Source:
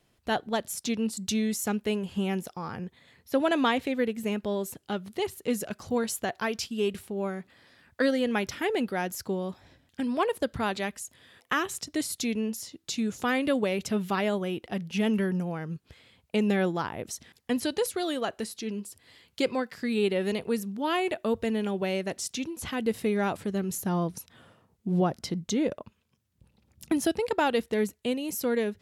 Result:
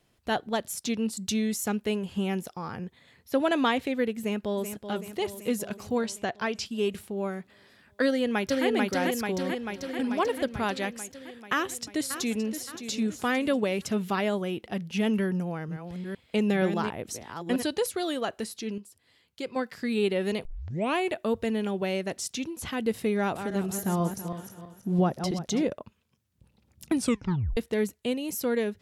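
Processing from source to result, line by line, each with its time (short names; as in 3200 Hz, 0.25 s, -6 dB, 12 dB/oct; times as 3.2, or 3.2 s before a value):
4.19–4.76 echo throw 0.38 s, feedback 65%, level -9.5 dB
6.01–6.66 LPF 7100 Hz
8.06–8.66 echo throw 0.44 s, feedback 70%, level -1 dB
9.32–10 echo throw 0.37 s, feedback 50%, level -15 dB
11.53–12.5 echo throw 0.57 s, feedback 40%, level -10.5 dB
15.21–17.65 reverse delay 0.47 s, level -7.5 dB
18.78–19.56 gain -8.5 dB
20.45 tape start 0.53 s
23.18–25.65 regenerating reverse delay 0.164 s, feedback 56%, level -8 dB
26.94 tape stop 0.63 s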